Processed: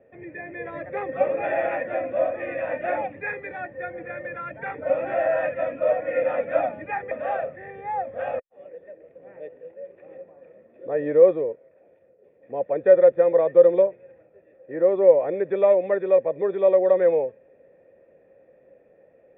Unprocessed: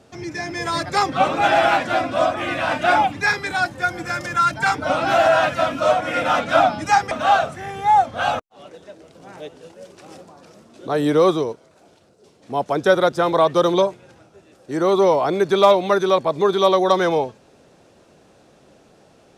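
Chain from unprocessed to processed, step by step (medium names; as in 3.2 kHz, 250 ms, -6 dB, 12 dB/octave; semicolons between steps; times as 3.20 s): cascade formant filter e; distance through air 240 m; trim +6.5 dB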